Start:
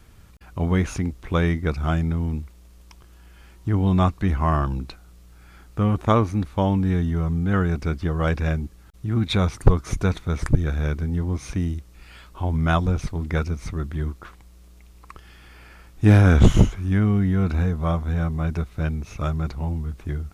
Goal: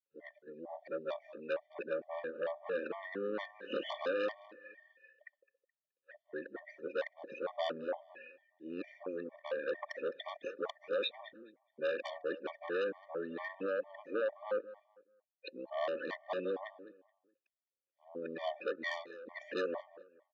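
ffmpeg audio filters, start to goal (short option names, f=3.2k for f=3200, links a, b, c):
-filter_complex "[0:a]areverse,asplit=3[a][b][c];[a]bandpass=f=530:t=q:w=8,volume=0dB[d];[b]bandpass=f=1.84k:t=q:w=8,volume=-6dB[e];[c]bandpass=f=2.48k:t=q:w=8,volume=-9dB[f];[d][e][f]amix=inputs=3:normalize=0,agate=range=-33dB:threshold=-59dB:ratio=3:detection=peak,acompressor=threshold=-35dB:ratio=12,afftdn=nr=22:nf=-56,aeval=exprs='0.0447*(cos(1*acos(clip(val(0)/0.0447,-1,1)))-cos(1*PI/2))+0.0126*(cos(5*acos(clip(val(0)/0.0447,-1,1)))-cos(5*PI/2))':c=same,highpass=f=280:w=0.5412,highpass=f=280:w=1.3066,equalizer=f=440:t=q:w=4:g=-4,equalizer=f=1.1k:t=q:w=4:g=8,equalizer=f=2.2k:t=q:w=4:g=-4,equalizer=f=3.6k:t=q:w=4:g=7,lowpass=f=6.1k:w=0.5412,lowpass=f=6.1k:w=1.3066,asplit=2[g][h];[h]adelay=212,lowpass=f=2.6k:p=1,volume=-16.5dB,asplit=2[i][j];[j]adelay=212,lowpass=f=2.6k:p=1,volume=0.29,asplit=2[k][l];[l]adelay=212,lowpass=f=2.6k:p=1,volume=0.29[m];[i][k][m]amix=inputs=3:normalize=0[n];[g][n]amix=inputs=2:normalize=0,afftfilt=real='re*gt(sin(2*PI*2.2*pts/sr)*(1-2*mod(floor(b*sr/1024/600),2)),0)':imag='im*gt(sin(2*PI*2.2*pts/sr)*(1-2*mod(floor(b*sr/1024/600),2)),0)':win_size=1024:overlap=0.75,volume=3.5dB"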